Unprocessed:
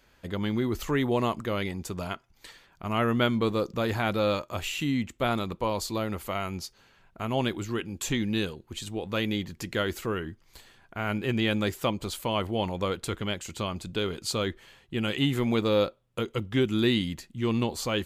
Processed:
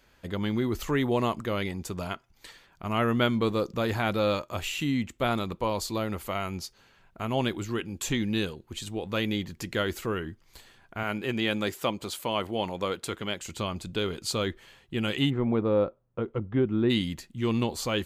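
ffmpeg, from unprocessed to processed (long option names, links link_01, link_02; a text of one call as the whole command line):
ffmpeg -i in.wav -filter_complex "[0:a]asettb=1/sr,asplit=3[link_01][link_02][link_03];[link_01]atrim=end=11.034[link_04];[link_02]atrim=start=11.03:end=13.41,asetpts=PTS-STARTPTS,afade=type=in:duration=0.004:curve=qsin,afade=type=out:start_time=2.376:duration=0.004:curve=qsin,highpass=frequency=210:poles=1[link_05];[link_03]atrim=start=13.406[link_06];[link_04][link_05]acrossfade=duration=0.004:curve1=hsin:curve2=qsin[link_07];[link_07][link_06]acrossfade=duration=0.004:curve1=qsin:curve2=hsin,asplit=3[link_08][link_09][link_10];[link_08]afade=type=out:start_time=15.29:duration=0.02[link_11];[link_09]lowpass=1200,afade=type=in:start_time=15.29:duration=0.02,afade=type=out:start_time=16.89:duration=0.02[link_12];[link_10]afade=type=in:start_time=16.89:duration=0.02[link_13];[link_11][link_12][link_13]amix=inputs=3:normalize=0" out.wav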